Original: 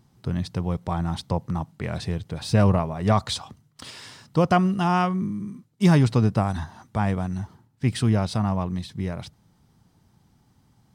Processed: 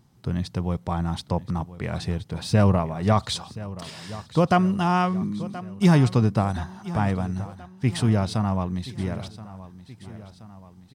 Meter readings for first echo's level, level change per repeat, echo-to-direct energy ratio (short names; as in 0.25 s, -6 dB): -16.5 dB, -5.0 dB, -15.0 dB